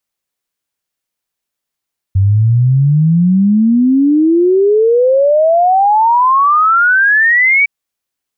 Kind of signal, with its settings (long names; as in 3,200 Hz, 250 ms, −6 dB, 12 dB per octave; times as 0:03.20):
exponential sine sweep 94 Hz → 2,300 Hz 5.51 s −6.5 dBFS